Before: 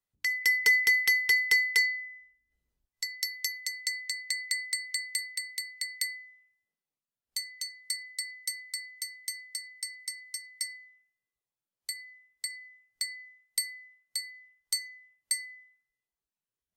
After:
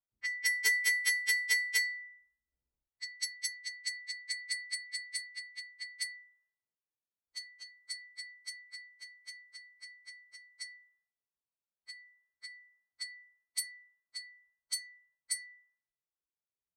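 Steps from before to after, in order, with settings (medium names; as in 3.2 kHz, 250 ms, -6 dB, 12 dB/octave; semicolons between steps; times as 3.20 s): partials quantised in pitch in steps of 2 st; level-controlled noise filter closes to 960 Hz, open at -21.5 dBFS; trim -7 dB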